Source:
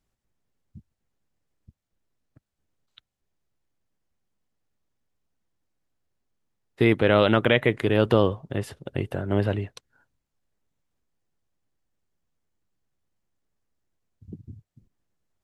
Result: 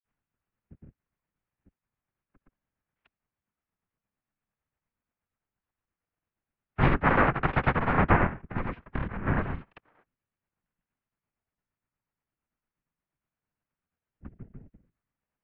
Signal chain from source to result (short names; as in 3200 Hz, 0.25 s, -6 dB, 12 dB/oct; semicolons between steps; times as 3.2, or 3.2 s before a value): noise vocoder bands 3; grains 0.209 s, grains 8.6/s, pitch spread up and down by 0 st; mistuned SSB -240 Hz 220–2900 Hz